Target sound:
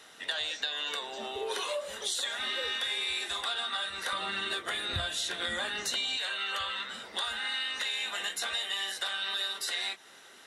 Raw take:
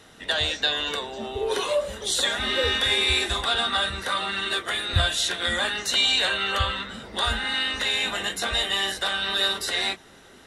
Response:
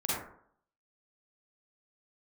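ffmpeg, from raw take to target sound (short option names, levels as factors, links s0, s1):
-af "asetnsamples=n=441:p=0,asendcmd='4.13 highpass f 130;6.17 highpass f 1100',highpass=f=870:p=1,acompressor=threshold=0.0282:ratio=5"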